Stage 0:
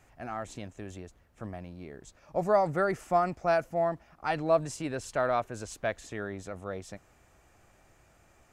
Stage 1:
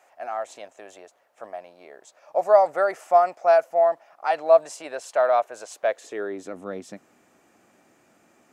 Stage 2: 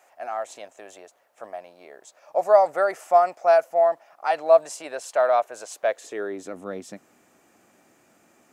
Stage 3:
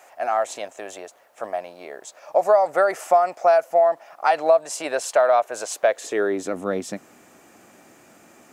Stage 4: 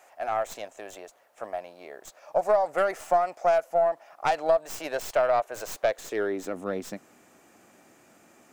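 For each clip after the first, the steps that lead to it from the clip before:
high-pass sweep 630 Hz -> 240 Hz, 5.75–6.65 s; trim +2 dB
treble shelf 7.5 kHz +6 dB
compression 4:1, threshold -23 dBFS, peak gain reduction 11 dB; trim +8.5 dB
tracing distortion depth 0.09 ms; trim -6 dB

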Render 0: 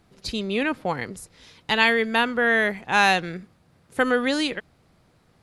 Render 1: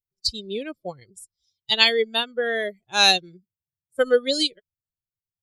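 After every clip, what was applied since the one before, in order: expander on every frequency bin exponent 2; graphic EQ 125/250/500/1000/2000/4000/8000 Hz -5/-7/+6/-10/-7/+11/+5 dB; upward expansion 1.5:1, over -38 dBFS; trim +6 dB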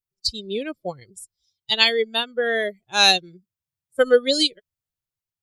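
level rider gain up to 3.5 dB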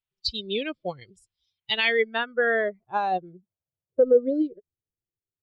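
peak limiter -11.5 dBFS, peak gain reduction 9.5 dB; low-pass sweep 3.2 kHz -> 400 Hz, 1.33–4.26 s; trim -2 dB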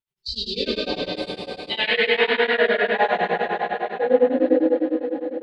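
vibrato 3.7 Hz 69 cents; reverberation RT60 5.0 s, pre-delay 6 ms, DRR -10 dB; tremolo of two beating tones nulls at 9.9 Hz; trim -2 dB

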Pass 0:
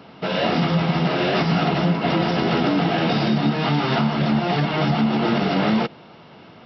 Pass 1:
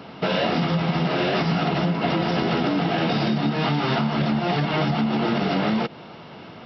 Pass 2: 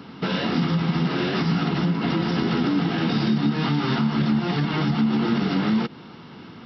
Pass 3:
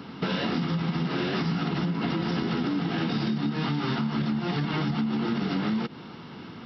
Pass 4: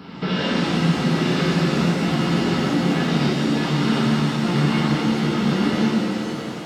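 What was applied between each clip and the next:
compression, threshold -23 dBFS, peak gain reduction 8 dB; trim +4 dB
fifteen-band graphic EQ 250 Hz +4 dB, 630 Hz -12 dB, 2.5 kHz -4 dB
compression, threshold -24 dBFS, peak gain reduction 7.5 dB
pitch-shifted reverb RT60 3 s, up +7 st, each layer -8 dB, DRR -6.5 dB

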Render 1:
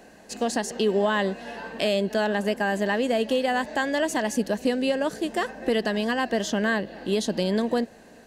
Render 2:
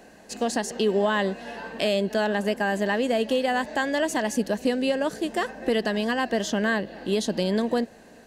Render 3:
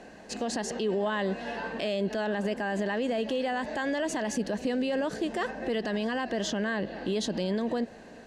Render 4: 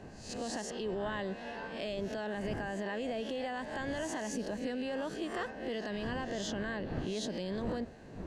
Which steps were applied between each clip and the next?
no audible change
distance through air 64 m; peak limiter -23 dBFS, peak gain reduction 10 dB; trim +2 dB
reverse spectral sustain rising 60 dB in 0.48 s; wind noise 290 Hz -39 dBFS; trim -8.5 dB

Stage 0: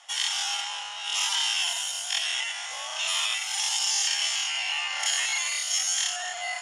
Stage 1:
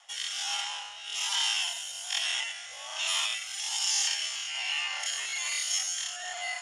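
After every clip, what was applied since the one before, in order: rotary cabinet horn 1.2 Hz; trim -1.5 dB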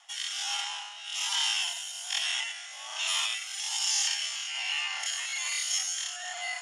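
steep high-pass 650 Hz 36 dB/octave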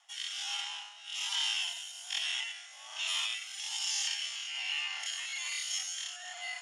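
dynamic bell 3 kHz, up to +5 dB, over -41 dBFS, Q 0.96; trim -8 dB

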